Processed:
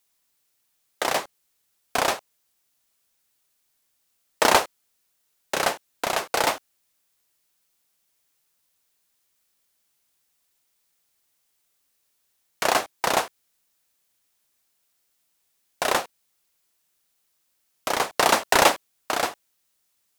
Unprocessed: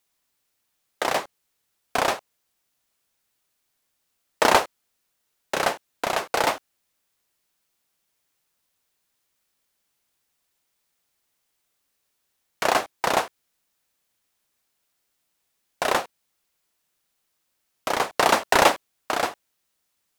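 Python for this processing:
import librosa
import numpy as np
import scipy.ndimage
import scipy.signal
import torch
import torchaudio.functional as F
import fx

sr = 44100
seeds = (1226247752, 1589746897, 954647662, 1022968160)

y = fx.high_shelf(x, sr, hz=4000.0, db=5.5)
y = y * librosa.db_to_amplitude(-1.0)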